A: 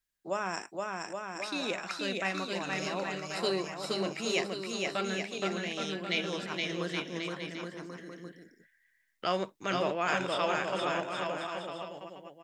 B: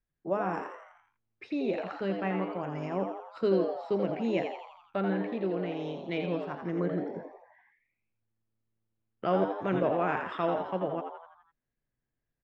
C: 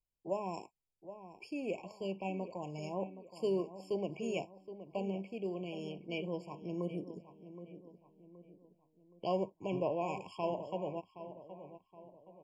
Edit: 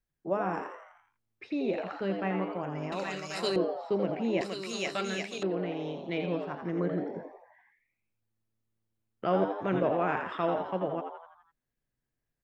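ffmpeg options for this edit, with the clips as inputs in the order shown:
-filter_complex "[0:a]asplit=2[s0][s1];[1:a]asplit=3[s2][s3][s4];[s2]atrim=end=2.922[s5];[s0]atrim=start=2.918:end=3.562[s6];[s3]atrim=start=3.558:end=4.412[s7];[s1]atrim=start=4.408:end=5.432[s8];[s4]atrim=start=5.428[s9];[s5][s6]acrossfade=d=0.004:c1=hsin:c2=hsin[s10];[s10][s7]acrossfade=d=0.004:c1=hsin:c2=hsin[s11];[s11][s8]acrossfade=d=0.004:c1=hsin:c2=hsin[s12];[s12][s9]acrossfade=d=0.004:c1=hsin:c2=hsin"

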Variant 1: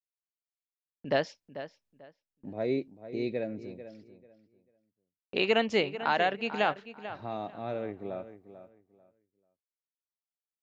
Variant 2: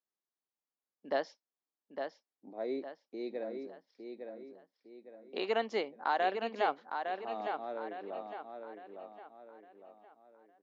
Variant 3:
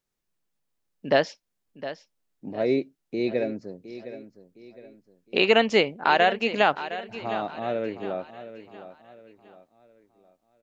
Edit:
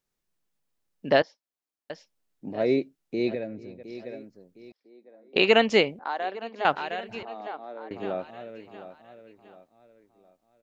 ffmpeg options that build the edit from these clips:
-filter_complex "[1:a]asplit=4[s0][s1][s2][s3];[2:a]asplit=6[s4][s5][s6][s7][s8][s9];[s4]atrim=end=1.222[s10];[s0]atrim=start=1.218:end=1.902[s11];[s5]atrim=start=1.898:end=3.352[s12];[0:a]atrim=start=3.348:end=3.832[s13];[s6]atrim=start=3.828:end=4.722[s14];[s1]atrim=start=4.718:end=5.362[s15];[s7]atrim=start=5.358:end=5.992[s16];[s2]atrim=start=5.988:end=6.652[s17];[s8]atrim=start=6.648:end=7.232[s18];[s3]atrim=start=7.228:end=7.912[s19];[s9]atrim=start=7.908[s20];[s10][s11]acrossfade=d=0.004:c1=hsin:c2=hsin[s21];[s21][s12]acrossfade=d=0.004:c1=hsin:c2=hsin[s22];[s22][s13]acrossfade=d=0.004:c1=hsin:c2=hsin[s23];[s23][s14]acrossfade=d=0.004:c1=hsin:c2=hsin[s24];[s24][s15]acrossfade=d=0.004:c1=hsin:c2=hsin[s25];[s25][s16]acrossfade=d=0.004:c1=hsin:c2=hsin[s26];[s26][s17]acrossfade=d=0.004:c1=hsin:c2=hsin[s27];[s27][s18]acrossfade=d=0.004:c1=hsin:c2=hsin[s28];[s28][s19]acrossfade=d=0.004:c1=hsin:c2=hsin[s29];[s29][s20]acrossfade=d=0.004:c1=hsin:c2=hsin"

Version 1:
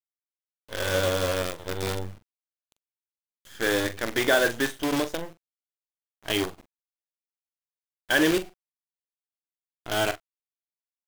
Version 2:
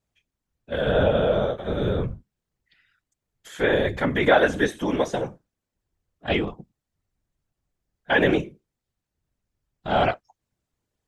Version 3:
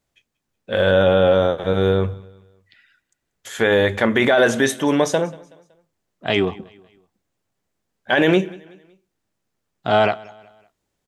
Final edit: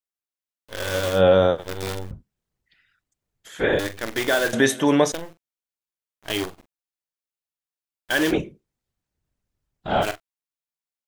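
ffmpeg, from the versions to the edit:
-filter_complex "[2:a]asplit=2[s0][s1];[1:a]asplit=2[s2][s3];[0:a]asplit=5[s4][s5][s6][s7][s8];[s4]atrim=end=1.22[s9];[s0]atrim=start=1.12:end=1.64[s10];[s5]atrim=start=1.54:end=2.112[s11];[s2]atrim=start=2.108:end=3.792[s12];[s6]atrim=start=3.788:end=4.532[s13];[s1]atrim=start=4.528:end=5.122[s14];[s7]atrim=start=5.118:end=8.33[s15];[s3]atrim=start=8.29:end=10.05[s16];[s8]atrim=start=10.01[s17];[s9][s10]acrossfade=d=0.1:c1=tri:c2=tri[s18];[s18][s11]acrossfade=d=0.1:c1=tri:c2=tri[s19];[s19][s12]acrossfade=d=0.004:c1=hsin:c2=hsin[s20];[s20][s13]acrossfade=d=0.004:c1=hsin:c2=hsin[s21];[s21][s14]acrossfade=d=0.004:c1=hsin:c2=hsin[s22];[s22][s15]acrossfade=d=0.004:c1=hsin:c2=hsin[s23];[s23][s16]acrossfade=d=0.04:c1=tri:c2=tri[s24];[s24][s17]acrossfade=d=0.04:c1=tri:c2=tri"

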